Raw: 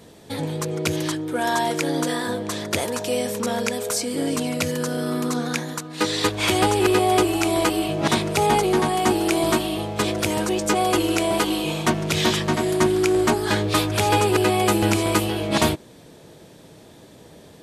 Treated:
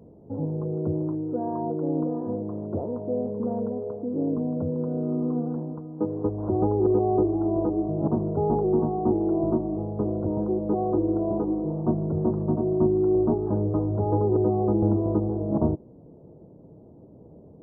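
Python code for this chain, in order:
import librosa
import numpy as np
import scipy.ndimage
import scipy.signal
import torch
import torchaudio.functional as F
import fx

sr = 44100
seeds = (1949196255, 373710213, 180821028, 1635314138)

y = scipy.ndimage.gaussian_filter1d(x, 13.0, mode='constant')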